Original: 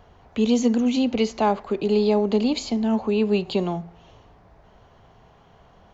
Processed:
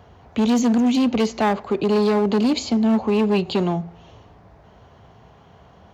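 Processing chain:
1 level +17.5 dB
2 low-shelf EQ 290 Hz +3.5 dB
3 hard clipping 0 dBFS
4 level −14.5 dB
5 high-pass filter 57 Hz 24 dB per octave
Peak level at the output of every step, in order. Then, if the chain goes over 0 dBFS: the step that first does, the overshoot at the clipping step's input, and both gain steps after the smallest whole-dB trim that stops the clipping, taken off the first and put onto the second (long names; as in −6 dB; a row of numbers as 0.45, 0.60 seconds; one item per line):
+8.0, +9.5, 0.0, −14.5, −9.5 dBFS
step 1, 9.5 dB
step 1 +7.5 dB, step 4 −4.5 dB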